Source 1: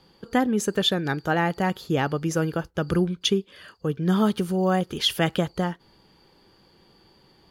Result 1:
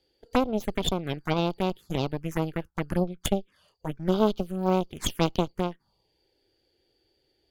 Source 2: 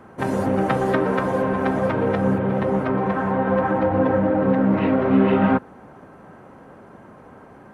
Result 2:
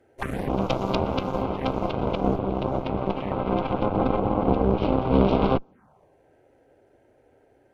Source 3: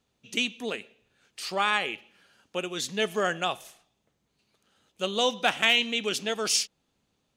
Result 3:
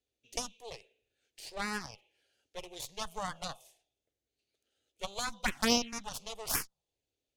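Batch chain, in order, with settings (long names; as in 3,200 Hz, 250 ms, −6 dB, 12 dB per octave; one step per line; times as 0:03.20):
harmonic generator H 3 −13 dB, 4 −8 dB, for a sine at −6 dBFS
phaser swept by the level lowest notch 180 Hz, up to 1,800 Hz, full sweep at −19.5 dBFS
level −1.5 dB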